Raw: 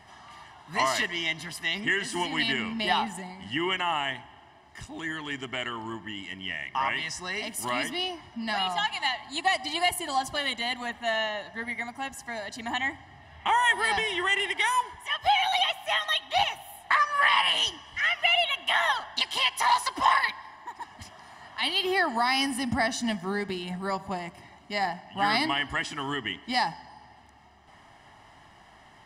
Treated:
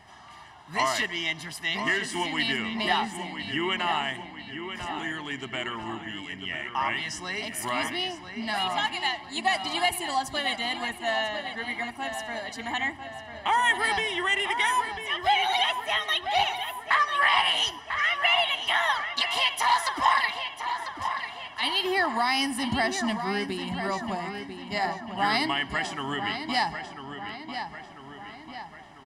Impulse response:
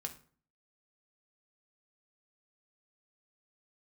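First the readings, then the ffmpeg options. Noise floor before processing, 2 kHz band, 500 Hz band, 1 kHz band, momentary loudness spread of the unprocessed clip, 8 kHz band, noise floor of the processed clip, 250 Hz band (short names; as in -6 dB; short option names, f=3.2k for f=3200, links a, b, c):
-54 dBFS, +0.5 dB, +1.0 dB, +1.0 dB, 13 LU, 0.0 dB, -45 dBFS, +1.0 dB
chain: -filter_complex "[0:a]asplit=2[a][b];[b]adelay=995,lowpass=f=4k:p=1,volume=-8dB,asplit=2[c][d];[d]adelay=995,lowpass=f=4k:p=1,volume=0.54,asplit=2[e][f];[f]adelay=995,lowpass=f=4k:p=1,volume=0.54,asplit=2[g][h];[h]adelay=995,lowpass=f=4k:p=1,volume=0.54,asplit=2[i][j];[j]adelay=995,lowpass=f=4k:p=1,volume=0.54,asplit=2[k][l];[l]adelay=995,lowpass=f=4k:p=1,volume=0.54[m];[a][c][e][g][i][k][m]amix=inputs=7:normalize=0"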